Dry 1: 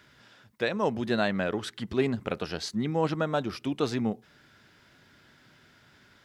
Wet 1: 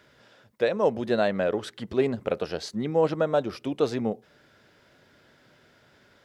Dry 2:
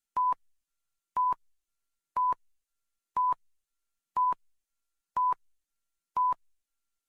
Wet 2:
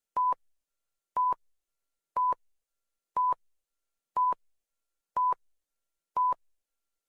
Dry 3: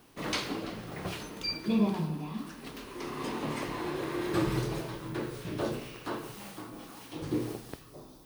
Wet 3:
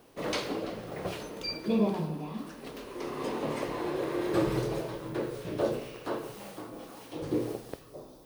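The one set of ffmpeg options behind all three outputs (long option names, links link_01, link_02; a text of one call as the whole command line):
ffmpeg -i in.wav -af "equalizer=frequency=530:width_type=o:width=0.98:gain=9.5,volume=-2dB" out.wav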